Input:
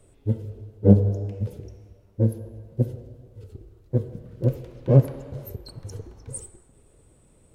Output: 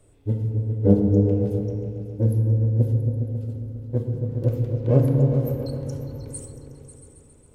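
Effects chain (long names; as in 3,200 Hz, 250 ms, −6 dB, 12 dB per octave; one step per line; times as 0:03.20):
echo whose low-pass opens from repeat to repeat 136 ms, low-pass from 200 Hz, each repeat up 2 octaves, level −3 dB
feedback delay network reverb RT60 2.1 s, low-frequency decay 1.4×, high-frequency decay 0.3×, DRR 5.5 dB
level −1.5 dB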